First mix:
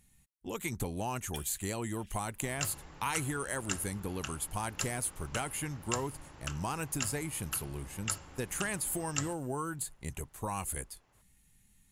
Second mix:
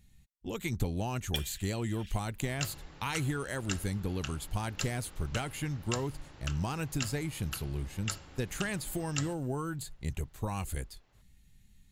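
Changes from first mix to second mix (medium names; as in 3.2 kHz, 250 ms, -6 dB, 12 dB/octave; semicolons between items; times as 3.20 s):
speech: add bass shelf 170 Hz +8.5 dB; first sound +9.0 dB; master: add fifteen-band graphic EQ 1 kHz -4 dB, 4 kHz +5 dB, 10 kHz -10 dB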